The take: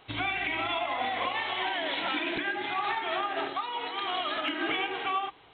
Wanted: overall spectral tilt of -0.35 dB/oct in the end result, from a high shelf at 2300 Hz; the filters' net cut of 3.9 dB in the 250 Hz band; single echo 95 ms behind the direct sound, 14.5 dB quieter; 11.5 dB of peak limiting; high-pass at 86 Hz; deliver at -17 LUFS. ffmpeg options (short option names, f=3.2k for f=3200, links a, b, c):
-af "highpass=86,equalizer=f=250:t=o:g=-5.5,highshelf=f=2.3k:g=-6.5,alimiter=level_in=6dB:limit=-24dB:level=0:latency=1,volume=-6dB,aecho=1:1:95:0.188,volume=20.5dB"